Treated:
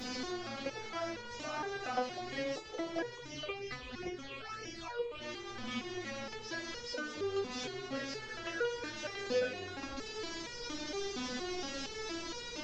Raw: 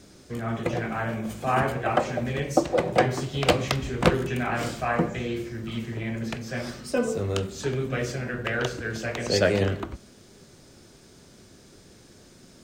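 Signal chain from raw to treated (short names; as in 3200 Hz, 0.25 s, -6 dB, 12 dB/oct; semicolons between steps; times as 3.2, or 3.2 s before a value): delta modulation 32 kbps, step -26 dBFS; compressor 3:1, threshold -27 dBFS, peak gain reduction 11 dB; 3.15–5.2 phaser stages 8, 3.7 Hz -> 1 Hz, lowest notch 210–1300 Hz; stepped resonator 4.3 Hz 250–480 Hz; gain +7 dB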